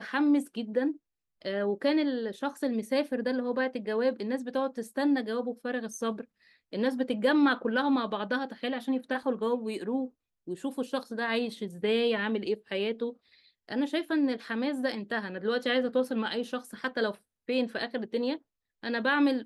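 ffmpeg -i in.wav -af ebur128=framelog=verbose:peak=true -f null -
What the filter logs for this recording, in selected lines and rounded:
Integrated loudness:
  I:         -30.3 LUFS
  Threshold: -40.6 LUFS
Loudness range:
  LRA:         3.0 LU
  Threshold: -50.7 LUFS
  LRA low:   -32.1 LUFS
  LRA high:  -29.1 LUFS
True peak:
  Peak:      -13.7 dBFS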